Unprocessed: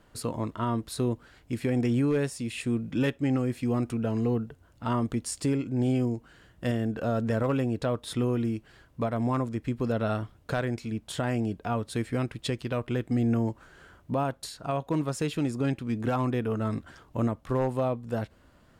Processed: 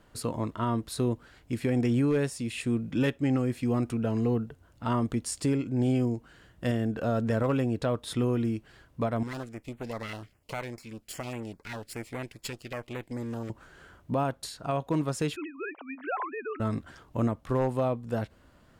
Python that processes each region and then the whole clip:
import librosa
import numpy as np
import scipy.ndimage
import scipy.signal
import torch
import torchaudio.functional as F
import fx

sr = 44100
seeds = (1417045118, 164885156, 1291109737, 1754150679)

y = fx.chain(x, sr, fx.lower_of_two(delay_ms=0.41),
    fx.low_shelf(hz=490.0, db=-11.5),
    fx.filter_held_notch(hz=10.0, low_hz=700.0, high_hz=5100.0), at=(9.23, 13.5))
y = fx.chain(y, sr, fx.sine_speech(),
    fx.highpass(hz=680.0, slope=12),
    fx.band_squash(depth_pct=40), at=(15.36, 16.6))